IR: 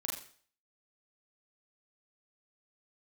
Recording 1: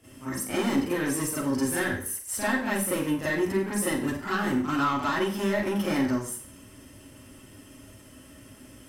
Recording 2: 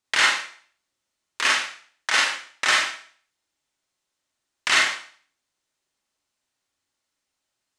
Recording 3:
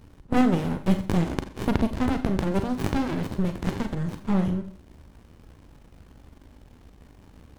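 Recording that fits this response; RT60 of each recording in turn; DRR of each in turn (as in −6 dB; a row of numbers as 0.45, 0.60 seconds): 2; 0.50, 0.50, 0.50 seconds; −11.0, −2.0, 7.5 decibels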